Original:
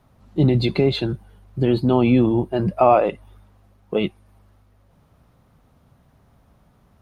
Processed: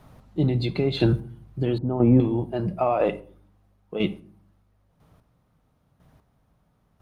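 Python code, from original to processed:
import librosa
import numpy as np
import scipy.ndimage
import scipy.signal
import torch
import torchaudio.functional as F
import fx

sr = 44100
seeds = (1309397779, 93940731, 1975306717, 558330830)

y = fx.rider(x, sr, range_db=5, speed_s=0.5)
y = fx.chopper(y, sr, hz=1.0, depth_pct=65, duty_pct=20)
y = fx.room_shoebox(y, sr, seeds[0], volume_m3=410.0, walls='furnished', distance_m=0.5)
y = 10.0 ** (-7.5 / 20.0) * np.tanh(y / 10.0 ** (-7.5 / 20.0))
y = fx.bessel_lowpass(y, sr, hz=1000.0, order=4, at=(1.78, 2.2))
y = F.gain(torch.from_numpy(y), 3.0).numpy()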